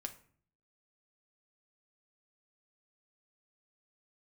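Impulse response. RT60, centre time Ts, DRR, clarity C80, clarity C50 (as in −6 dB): 0.50 s, 7 ms, 5.0 dB, 18.0 dB, 13.5 dB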